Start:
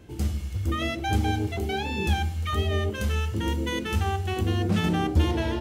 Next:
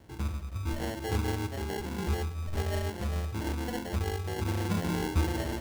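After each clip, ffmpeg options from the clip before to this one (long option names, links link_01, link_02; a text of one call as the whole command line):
ffmpeg -i in.wav -af "acrusher=samples=36:mix=1:aa=0.000001,volume=-6dB" out.wav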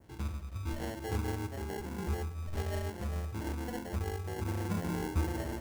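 ffmpeg -i in.wav -af "adynamicequalizer=threshold=0.002:dfrequency=3600:dqfactor=1.2:tfrequency=3600:tqfactor=1.2:attack=5:release=100:ratio=0.375:range=3:mode=cutabove:tftype=bell,volume=-4dB" out.wav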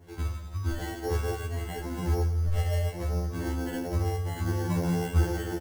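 ffmpeg -i in.wav -af "aecho=1:1:84|168|252|336|420|504:0.211|0.123|0.0711|0.0412|0.0239|0.0139,afftfilt=real='re*2*eq(mod(b,4),0)':imag='im*2*eq(mod(b,4),0)':win_size=2048:overlap=0.75,volume=7dB" out.wav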